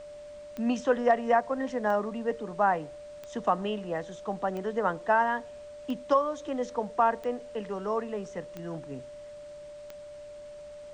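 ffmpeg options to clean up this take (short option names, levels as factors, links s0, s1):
-af "adeclick=t=4,bandreject=f=590:w=30,agate=range=0.0891:threshold=0.0141"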